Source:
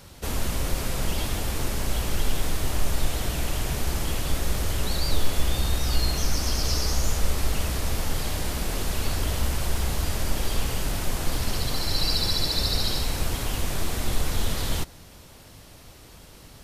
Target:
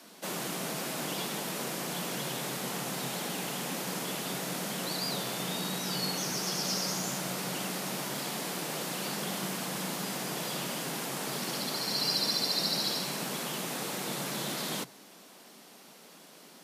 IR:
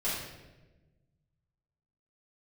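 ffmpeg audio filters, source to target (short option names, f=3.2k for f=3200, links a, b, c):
-af "highpass=f=210:p=1,afreqshift=120,volume=-3dB"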